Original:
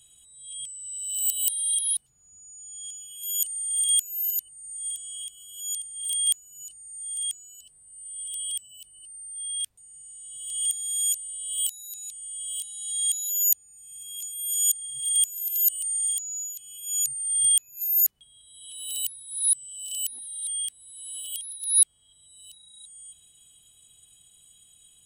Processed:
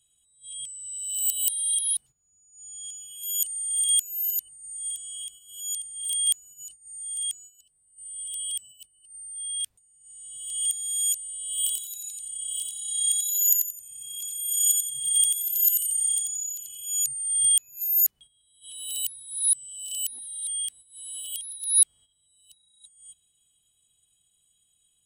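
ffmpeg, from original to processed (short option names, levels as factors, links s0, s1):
-filter_complex "[0:a]asettb=1/sr,asplit=3[s0][s1][s2];[s0]atrim=end=11.534[s3];[s1]atrim=start=11.53:end=16.86,asetpts=PTS-STARTPTS,afade=t=in:d=0.004:c=qsin,afade=t=out:st=5.326:d=0.004:c=qsin,asplit=5[s4][s5][s6][s7][s8];[s5]adelay=88,afreqshift=32,volume=0.668[s9];[s6]adelay=176,afreqshift=64,volume=0.214[s10];[s7]adelay=264,afreqshift=96,volume=0.0684[s11];[s8]adelay=352,afreqshift=128,volume=0.0219[s12];[s4][s9][s10][s11][s12]amix=inputs=5:normalize=0,atrim=end_sample=235053[s13];[s2]atrim=start=16.856[s14];[s3][s13]acrossfade=d=0.004:c1=hsin:c2=qsin[s15];[s15][s14]acrossfade=d=0.004:c1=qsin:c2=hsin,agate=range=0.251:threshold=0.00562:ratio=16:detection=peak"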